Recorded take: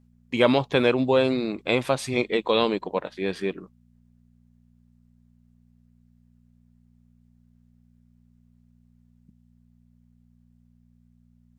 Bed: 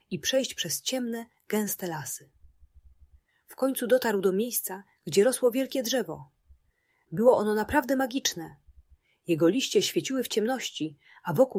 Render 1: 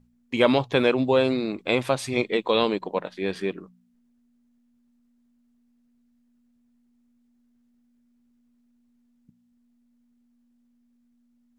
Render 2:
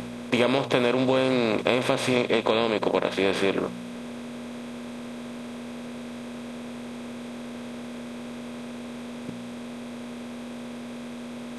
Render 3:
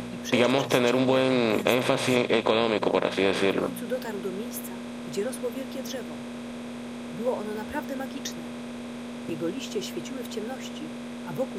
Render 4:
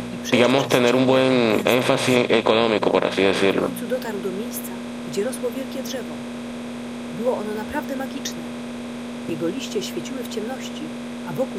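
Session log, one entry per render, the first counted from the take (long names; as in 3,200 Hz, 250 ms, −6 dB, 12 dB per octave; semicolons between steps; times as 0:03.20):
hum removal 60 Hz, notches 3
compressor on every frequency bin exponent 0.4; downward compressor 6 to 1, threshold −18 dBFS, peak gain reduction 8.5 dB
mix in bed −8.5 dB
level +5.5 dB; brickwall limiter −2 dBFS, peak gain reduction 1.5 dB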